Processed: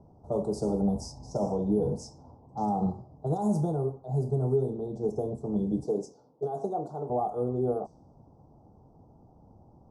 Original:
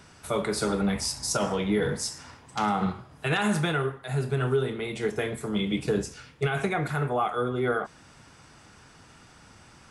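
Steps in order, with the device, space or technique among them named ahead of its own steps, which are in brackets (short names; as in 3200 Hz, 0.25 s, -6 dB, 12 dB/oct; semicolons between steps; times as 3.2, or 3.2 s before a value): through cloth (high shelf 3600 Hz -12 dB); 5.84–7.1 HPF 300 Hz 12 dB/oct; low-pass opened by the level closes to 1500 Hz, open at -23 dBFS; elliptic band-stop 810–5600 Hz, stop band 70 dB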